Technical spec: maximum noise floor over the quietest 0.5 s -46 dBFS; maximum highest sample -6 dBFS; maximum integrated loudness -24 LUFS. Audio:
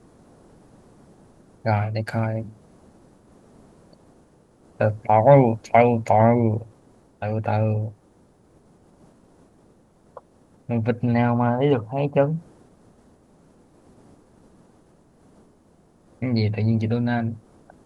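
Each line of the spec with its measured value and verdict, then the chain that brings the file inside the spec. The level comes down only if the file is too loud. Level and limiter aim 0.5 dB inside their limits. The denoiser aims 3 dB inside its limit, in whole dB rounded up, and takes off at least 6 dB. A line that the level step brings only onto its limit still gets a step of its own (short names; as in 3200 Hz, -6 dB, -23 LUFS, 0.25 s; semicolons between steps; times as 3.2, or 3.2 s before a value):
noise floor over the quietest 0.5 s -57 dBFS: OK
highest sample -2.0 dBFS: fail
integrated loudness -21.5 LUFS: fail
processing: gain -3 dB; limiter -6.5 dBFS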